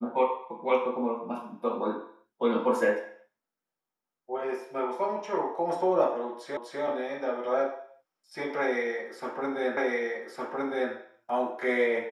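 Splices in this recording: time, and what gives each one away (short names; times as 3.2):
6.57 repeat of the last 0.25 s
9.77 repeat of the last 1.16 s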